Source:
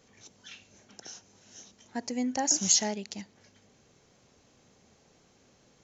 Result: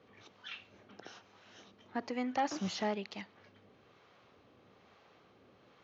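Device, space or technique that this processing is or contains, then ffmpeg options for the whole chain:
guitar amplifier with harmonic tremolo: -filter_complex "[0:a]acrossover=split=600[s0][s1];[s0]aeval=exprs='val(0)*(1-0.5/2+0.5/2*cos(2*PI*1.1*n/s))':c=same[s2];[s1]aeval=exprs='val(0)*(1-0.5/2-0.5/2*cos(2*PI*1.1*n/s))':c=same[s3];[s2][s3]amix=inputs=2:normalize=0,asoftclip=type=tanh:threshold=0.0447,highpass=100,equalizer=f=150:t=q:w=4:g=-7,equalizer=f=230:t=q:w=4:g=-5,equalizer=f=1200:t=q:w=4:g=7,lowpass=f=3700:w=0.5412,lowpass=f=3700:w=1.3066,volume=1.5"

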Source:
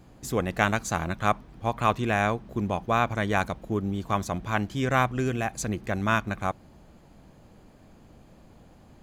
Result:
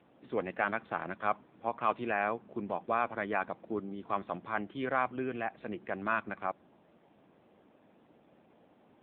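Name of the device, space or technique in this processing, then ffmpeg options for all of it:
telephone: -af "highpass=270,lowpass=3400,asoftclip=type=tanh:threshold=0.316,volume=0.596" -ar 8000 -c:a libopencore_amrnb -b:a 7950

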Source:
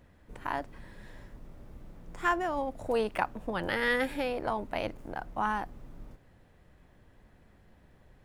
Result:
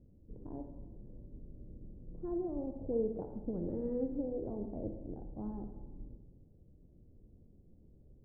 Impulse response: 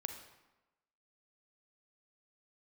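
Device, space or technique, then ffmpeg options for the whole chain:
next room: -filter_complex "[0:a]lowpass=f=430:w=0.5412,lowpass=f=430:w=1.3066[s0];[1:a]atrim=start_sample=2205[s1];[s0][s1]afir=irnorm=-1:irlink=0,volume=1.12"

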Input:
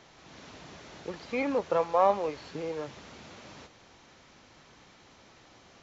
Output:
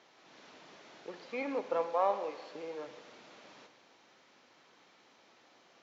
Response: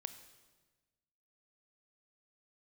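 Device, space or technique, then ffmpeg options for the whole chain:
supermarket ceiling speaker: -filter_complex "[0:a]asettb=1/sr,asplit=3[s0][s1][s2];[s0]atrim=end=1.864[s3];[s1]atrim=start=1.86:end=2.63,asetpts=PTS-STARTPTS,afade=t=in:d=0.004:c=qsin,afade=t=out:st=0.766:d=0.004:c=qsin,highpass=f=200:p=1[s4];[s2]atrim=start=2.626[s5];[s3][s4]acrossfade=d=0.004:c1=hsin:c2=qsin[s6];[s6][s5]acrossfade=d=0.004:c1=qsin:c2=hsin,highpass=280,lowpass=6100[s7];[1:a]atrim=start_sample=2205[s8];[s7][s8]afir=irnorm=-1:irlink=0,volume=0.75"

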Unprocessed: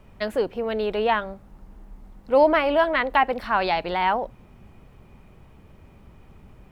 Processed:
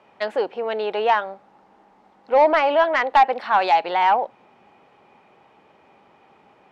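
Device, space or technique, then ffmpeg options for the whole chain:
intercom: -af "highpass=410,lowpass=4700,equalizer=f=820:t=o:w=0.24:g=8,asoftclip=type=tanh:threshold=0.316,volume=1.41"

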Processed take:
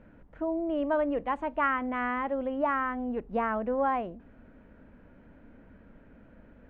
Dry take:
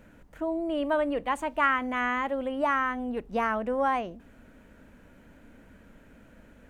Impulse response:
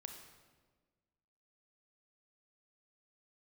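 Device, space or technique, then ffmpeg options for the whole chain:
phone in a pocket: -af "lowpass=3300,highshelf=f=2400:g=-12"

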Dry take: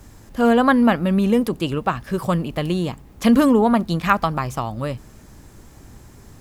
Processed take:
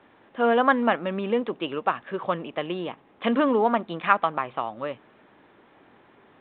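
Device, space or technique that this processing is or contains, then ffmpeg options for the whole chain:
telephone: -af "highpass=380,lowpass=3500,volume=0.794" -ar 8000 -c:a pcm_mulaw

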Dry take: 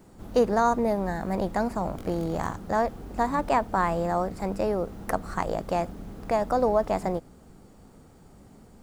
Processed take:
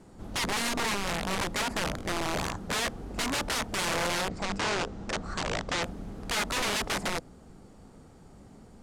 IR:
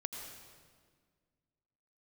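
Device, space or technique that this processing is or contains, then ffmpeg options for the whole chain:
overflowing digital effects unit: -filter_complex "[0:a]aeval=exprs='(mod(15*val(0)+1,2)-1)/15':c=same,lowpass=9900,asplit=3[s0][s1][s2];[s0]afade=t=out:st=4.28:d=0.02[s3];[s1]lowpass=f=7700:w=0.5412,lowpass=f=7700:w=1.3066,afade=t=in:st=4.28:d=0.02,afade=t=out:st=5.82:d=0.02[s4];[s2]afade=t=in:st=5.82:d=0.02[s5];[s3][s4][s5]amix=inputs=3:normalize=0"

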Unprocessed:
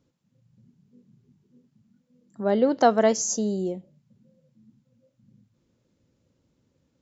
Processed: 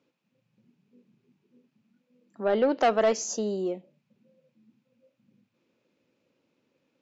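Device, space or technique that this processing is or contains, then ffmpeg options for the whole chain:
intercom: -af "highpass=300,lowpass=4400,equalizer=f=2500:t=o:w=0.28:g=9,asoftclip=type=tanh:threshold=0.133,volume=1.19"

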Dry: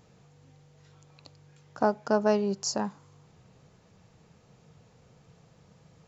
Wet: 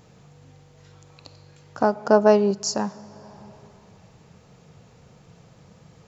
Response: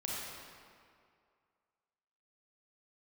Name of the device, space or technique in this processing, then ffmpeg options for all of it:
compressed reverb return: -filter_complex "[0:a]asplit=2[s0][s1];[1:a]atrim=start_sample=2205[s2];[s1][s2]afir=irnorm=-1:irlink=0,acompressor=threshold=0.0141:ratio=12,volume=0.447[s3];[s0][s3]amix=inputs=2:normalize=0,asettb=1/sr,asplit=3[s4][s5][s6];[s4]atrim=end=1.954[s7];[s5]atrim=start=1.95:end=2.51,asetpts=PTS-STARTPTS,afade=t=in:d=0.004:c=qsin,afade=t=out:st=0.556:d=0.004:c=qsin,equalizer=f=560:t=o:w=2.6:g=5[s8];[s6]atrim=start=2.506[s9];[s7][s8]acrossfade=d=0.004:c1=hsin:c2=qsin[s10];[s10][s9]acrossfade=d=0.004:c1=qsin:c2=hsin,volume=1.58"

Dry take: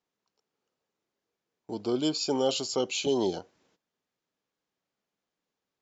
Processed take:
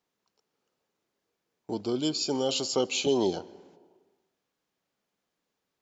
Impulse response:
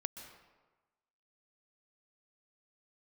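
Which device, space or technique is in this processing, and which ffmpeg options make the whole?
ducked reverb: -filter_complex "[0:a]asettb=1/sr,asplit=3[s0][s1][s2];[s0]atrim=end=1.814[s3];[s1]atrim=start=1.81:end=2.52,asetpts=PTS-STARTPTS,afade=t=in:d=0.004:c=qsin,afade=t=out:st=0.706:d=0.004:c=qsin,equalizer=f=820:w=0.35:g=-5[s4];[s2]atrim=start=2.516[s5];[s3][s4]acrossfade=d=0.004:c1=hsin:c2=qsin[s6];[s6][s5]acrossfade=d=0.004:c1=qsin:c2=hsin,asplit=3[s7][s8][s9];[1:a]atrim=start_sample=2205[s10];[s8][s10]afir=irnorm=-1:irlink=0[s11];[s9]apad=whole_len=256564[s12];[s11][s12]sidechaincompress=threshold=0.0224:ratio=4:attack=36:release=982,volume=0.668[s13];[s7][s13]amix=inputs=2:normalize=0"

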